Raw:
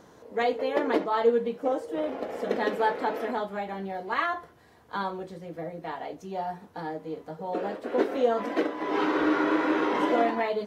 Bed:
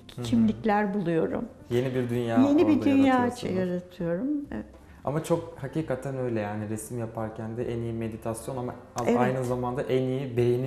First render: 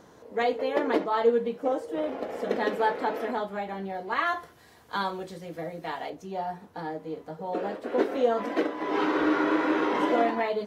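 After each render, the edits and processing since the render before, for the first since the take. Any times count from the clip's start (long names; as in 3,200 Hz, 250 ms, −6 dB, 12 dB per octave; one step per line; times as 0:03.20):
0:04.26–0:06.10: high-shelf EQ 2,200 Hz +9 dB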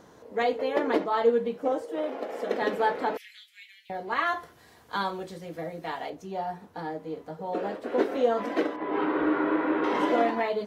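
0:01.85–0:02.62: high-pass filter 270 Hz
0:03.17–0:03.90: Butterworth high-pass 2,100 Hz 48 dB per octave
0:08.76–0:09.84: high-frequency loss of the air 390 metres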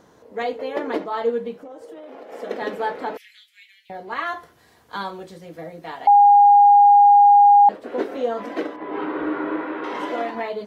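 0:01.55–0:02.32: downward compressor 16 to 1, threshold −35 dBFS
0:06.07–0:07.69: beep over 815 Hz −8 dBFS
0:09.64–0:10.35: low-shelf EQ 470 Hz −6 dB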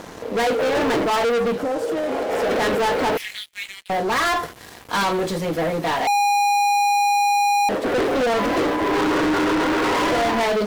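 brickwall limiter −17 dBFS, peak gain reduction 9 dB
leveller curve on the samples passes 5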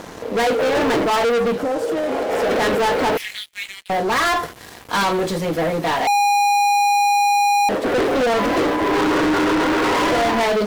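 level +2 dB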